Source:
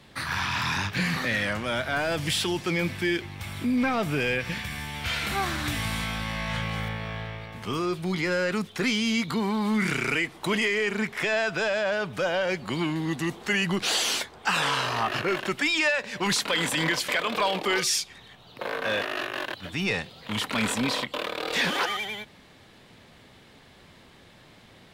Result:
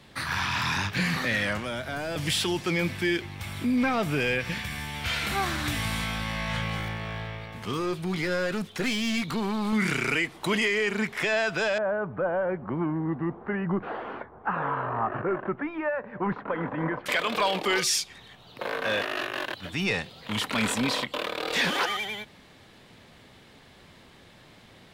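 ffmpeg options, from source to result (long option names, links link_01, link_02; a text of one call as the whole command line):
ffmpeg -i in.wav -filter_complex "[0:a]asettb=1/sr,asplit=3[link_01][link_02][link_03];[link_01]atrim=end=1.584[link_04];[link_02]atrim=start=1.58:end=2.16,asetpts=PTS-STARTPTS,afade=type=in:duration=0.004:curve=qsin,afade=type=out:start_time=0.576:duration=0.004:curve=qsin,acrossover=split=590|4900[link_05][link_06][link_07];[link_05]acompressor=threshold=-33dB:ratio=4[link_08];[link_06]acompressor=threshold=-35dB:ratio=4[link_09];[link_07]acompressor=threshold=-48dB:ratio=4[link_10];[link_08][link_09][link_10]amix=inputs=3:normalize=0[link_11];[link_03]atrim=start=2.156[link_12];[link_04][link_11]acrossfade=duration=0.004:curve1=hsin:curve2=qsin[link_13];[link_13][link_12]acrossfade=duration=0.004:curve1=qsin:curve2=hsin,asettb=1/sr,asplit=3[link_14][link_15][link_16];[link_14]atrim=end=6.774[link_17];[link_15]atrim=start=6.77:end=9.73,asetpts=PTS-STARTPTS,afade=type=in:duration=0.004:curve=qsin,afade=type=out:start_time=2.956:duration=0.004:curve=qsin,aeval=exprs='clip(val(0),-1,0.0398)':channel_layout=same[link_18];[link_16]atrim=start=9.726[link_19];[link_17][link_18]acrossfade=duration=0.004:curve1=hsin:curve2=qsin[link_20];[link_20][link_19]acrossfade=duration=0.004:curve1=qsin:curve2=hsin,asettb=1/sr,asplit=3[link_21][link_22][link_23];[link_21]atrim=end=11.784[link_24];[link_22]atrim=start=11.78:end=17.06,asetpts=PTS-STARTPTS,afade=type=in:duration=0.004:curve=qsin,afade=type=out:start_time=5.276:duration=0.004:curve=qsin,lowpass=frequency=1400:width=0.5412,lowpass=frequency=1400:width=1.3066[link_25];[link_23]atrim=start=17.056[link_26];[link_24][link_25]acrossfade=duration=0.004:curve1=hsin:curve2=qsin[link_27];[link_27][link_26]acrossfade=duration=0.004:curve1=qsin:curve2=hsin" out.wav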